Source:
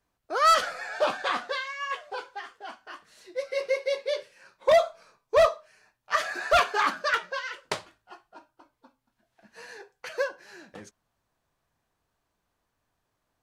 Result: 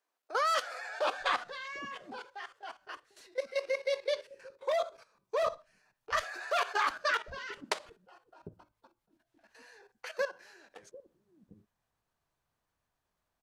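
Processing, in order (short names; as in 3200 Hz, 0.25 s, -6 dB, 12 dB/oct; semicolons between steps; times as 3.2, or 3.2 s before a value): level quantiser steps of 14 dB; bands offset in time highs, lows 0.75 s, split 320 Hz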